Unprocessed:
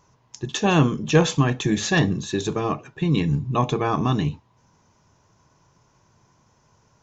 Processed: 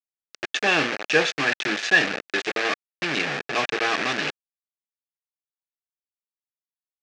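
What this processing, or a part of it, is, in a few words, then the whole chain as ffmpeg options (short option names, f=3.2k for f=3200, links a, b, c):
hand-held game console: -filter_complex "[0:a]asettb=1/sr,asplit=3[a][b][c];[a]atrim=end=2.614[d];[b]atrim=start=2.61:end=3.09,asetpts=PTS-STARTPTS,afade=t=in:d=0.004:c=qsin,afade=t=out:st=0.476:d=0.004:c=qsin,highpass=f=62:p=1[e];[c]atrim=start=3.086[f];[d][e]acrossfade=d=0.004:c1=hsin:c2=qsin[g];[g][f]acrossfade=d=0.004:c1=qsin:c2=hsin,acrusher=bits=3:mix=0:aa=0.000001,highpass=450,equalizer=f=990:t=q:w=4:g=-9,equalizer=f=1.7k:t=q:w=4:g=8,equalizer=f=2.5k:t=q:w=4:g=7,lowpass=f=5.6k:w=0.5412,lowpass=f=5.6k:w=1.3066"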